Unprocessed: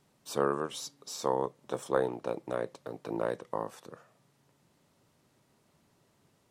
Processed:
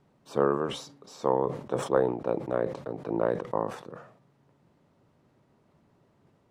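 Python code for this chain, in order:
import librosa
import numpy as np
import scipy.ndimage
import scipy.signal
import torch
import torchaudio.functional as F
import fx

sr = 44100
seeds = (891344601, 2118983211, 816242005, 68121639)

y = fx.lowpass(x, sr, hz=1100.0, slope=6)
y = fx.sustainer(y, sr, db_per_s=90.0)
y = y * librosa.db_to_amplitude(5.0)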